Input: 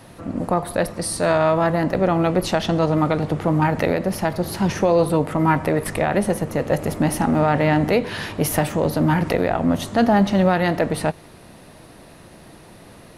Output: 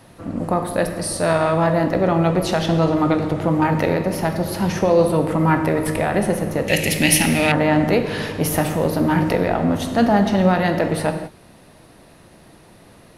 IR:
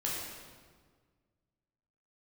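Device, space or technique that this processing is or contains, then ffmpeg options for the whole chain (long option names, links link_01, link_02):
keyed gated reverb: -filter_complex "[0:a]asplit=3[link_01][link_02][link_03];[1:a]atrim=start_sample=2205[link_04];[link_02][link_04]afir=irnorm=-1:irlink=0[link_05];[link_03]apad=whole_len=580875[link_06];[link_05][link_06]sidechaingate=range=-33dB:threshold=-38dB:ratio=16:detection=peak,volume=-7dB[link_07];[link_01][link_07]amix=inputs=2:normalize=0,asettb=1/sr,asplit=3[link_08][link_09][link_10];[link_08]atrim=end=6.684[link_11];[link_09]atrim=start=6.68:end=7.52,asetpts=PTS-STARTPTS,afade=type=in:duration=0.004:curve=qsin,afade=type=out:start_time=0.836:duration=0.004:curve=qsin,highshelf=frequency=1700:width_type=q:width=3:gain=12.5[link_12];[link_10]atrim=start=7.516[link_13];[link_11][link_12]acrossfade=duration=0.004:curve1=hsin:curve2=qsin[link_14];[link_14][link_13]acrossfade=duration=0.004:curve1=qsin:curve2=hsin,volume=-3dB"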